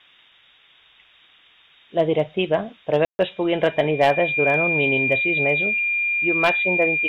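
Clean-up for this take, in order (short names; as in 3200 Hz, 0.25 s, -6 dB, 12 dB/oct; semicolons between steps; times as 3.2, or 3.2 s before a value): clip repair -8.5 dBFS; notch 2400 Hz, Q 30; room tone fill 3.05–3.19; noise print and reduce 11 dB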